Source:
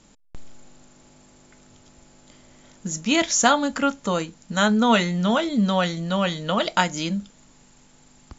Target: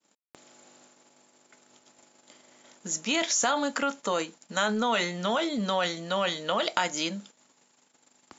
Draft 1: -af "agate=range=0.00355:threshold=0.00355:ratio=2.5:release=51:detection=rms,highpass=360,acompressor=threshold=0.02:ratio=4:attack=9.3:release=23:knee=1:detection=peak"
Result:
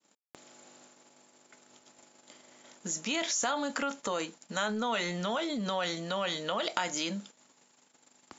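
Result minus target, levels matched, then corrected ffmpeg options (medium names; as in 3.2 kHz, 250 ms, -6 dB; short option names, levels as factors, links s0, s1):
compression: peak gain reduction +5 dB
-af "agate=range=0.00355:threshold=0.00355:ratio=2.5:release=51:detection=rms,highpass=360,acompressor=threshold=0.0447:ratio=4:attack=9.3:release=23:knee=1:detection=peak"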